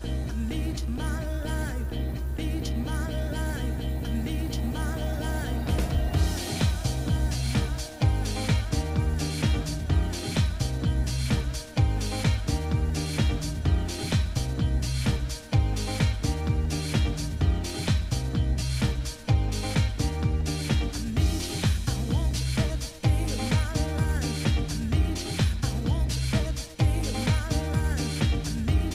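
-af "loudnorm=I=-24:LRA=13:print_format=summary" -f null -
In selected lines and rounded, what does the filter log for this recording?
Input Integrated:    -27.7 LUFS
Input True Peak:     -12.0 dBTP
Input LRA:             2.5 LU
Input Threshold:     -37.7 LUFS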